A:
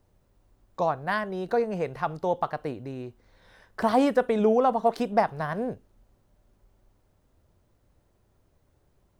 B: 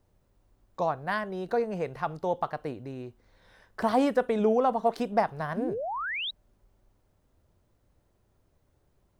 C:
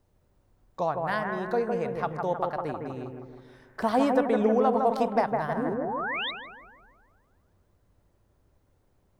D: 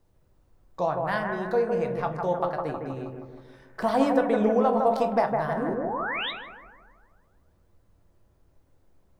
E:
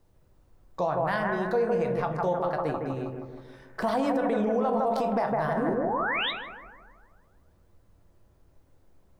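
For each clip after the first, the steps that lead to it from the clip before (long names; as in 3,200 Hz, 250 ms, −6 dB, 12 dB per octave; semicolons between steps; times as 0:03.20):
sound drawn into the spectrogram rise, 0:05.56–0:06.31, 210–4,000 Hz −30 dBFS; level −2.5 dB
bucket-brigade delay 158 ms, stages 2,048, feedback 53%, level −4 dB
rectangular room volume 130 cubic metres, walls furnished, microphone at 0.7 metres
brickwall limiter −20 dBFS, peak gain reduction 11 dB; level +2 dB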